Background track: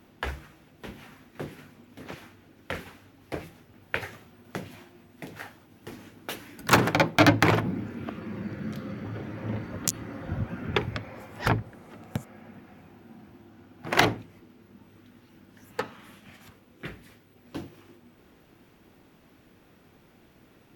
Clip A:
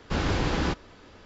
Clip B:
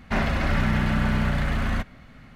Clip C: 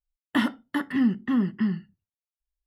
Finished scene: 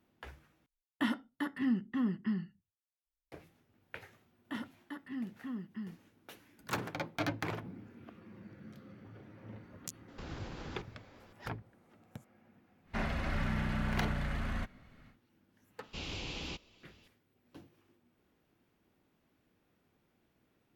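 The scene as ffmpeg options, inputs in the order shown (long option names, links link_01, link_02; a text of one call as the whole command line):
ffmpeg -i bed.wav -i cue0.wav -i cue1.wav -i cue2.wav -filter_complex "[3:a]asplit=2[link_01][link_02];[1:a]asplit=2[link_03][link_04];[0:a]volume=-17dB[link_05];[link_03]acompressor=threshold=-31dB:ratio=6:attack=3.2:release=140:knee=1:detection=peak[link_06];[link_04]highshelf=frequency=2100:width_type=q:width=3:gain=7.5[link_07];[link_05]asplit=2[link_08][link_09];[link_08]atrim=end=0.664[link_10];[link_01]atrim=end=2.66,asetpts=PTS-STARTPTS,volume=-9dB[link_11];[link_09]atrim=start=3.316[link_12];[link_02]atrim=end=2.66,asetpts=PTS-STARTPTS,volume=-17.5dB,afade=type=in:duration=0.004:curve=hsin,afade=type=out:start_time=2.656:duration=0.004:curve=hsin,adelay=4160[link_13];[link_06]atrim=end=1.25,asetpts=PTS-STARTPTS,volume=-10.5dB,afade=type=in:duration=0.004:curve=hsin,afade=type=out:start_time=1.246:duration=0.004:curve=hsin,adelay=10080[link_14];[2:a]atrim=end=2.35,asetpts=PTS-STARTPTS,volume=-11.5dB,afade=type=in:duration=0.1,afade=type=out:start_time=2.25:duration=0.1,adelay=12830[link_15];[link_07]atrim=end=1.25,asetpts=PTS-STARTPTS,volume=-17.5dB,afade=type=in:duration=0.004:curve=hsin,afade=type=out:start_time=1.246:duration=0.004:curve=hsin,adelay=15830[link_16];[link_10][link_11]acrossfade=duration=0.004:curve1=hsin:curve2=hsin[link_17];[link_17][link_12]acrossfade=duration=0.004:curve1=hsin:curve2=hsin[link_18];[link_18][link_13][link_14][link_15][link_16]amix=inputs=5:normalize=0" out.wav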